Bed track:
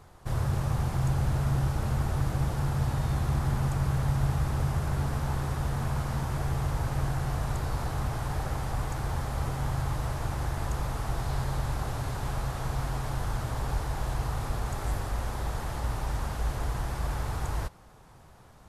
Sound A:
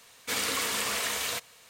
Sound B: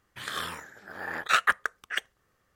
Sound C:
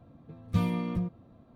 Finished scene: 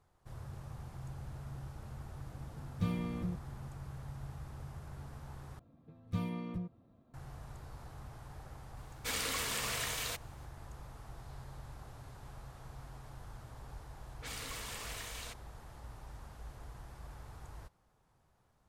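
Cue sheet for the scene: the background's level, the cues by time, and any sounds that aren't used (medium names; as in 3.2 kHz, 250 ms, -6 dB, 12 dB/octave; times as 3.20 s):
bed track -18.5 dB
2.27 s: add C -7 dB + Butterworth band-stop 830 Hz, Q 2.8
5.59 s: replace with C -9 dB
8.77 s: add A -5.5 dB + companding laws mixed up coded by A
13.94 s: add A -14.5 dB + level-controlled noise filter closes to 740 Hz, open at -27.5 dBFS
not used: B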